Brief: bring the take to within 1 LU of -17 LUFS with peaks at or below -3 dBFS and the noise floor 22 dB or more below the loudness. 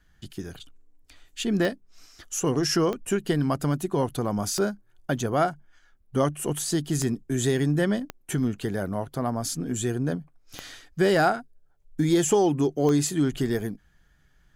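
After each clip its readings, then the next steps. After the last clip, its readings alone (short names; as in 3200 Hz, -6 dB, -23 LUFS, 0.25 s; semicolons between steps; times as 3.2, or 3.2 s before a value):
clicks 7; loudness -26.0 LUFS; peak -9.5 dBFS; loudness target -17.0 LUFS
-> de-click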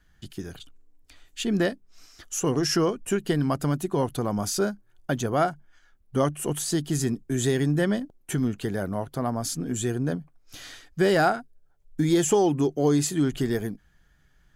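clicks 0; loudness -26.0 LUFS; peak -9.5 dBFS; loudness target -17.0 LUFS
-> gain +9 dB; limiter -3 dBFS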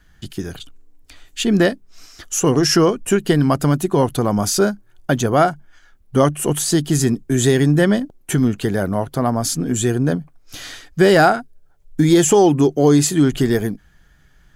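loudness -17.0 LUFS; peak -3.0 dBFS; noise floor -52 dBFS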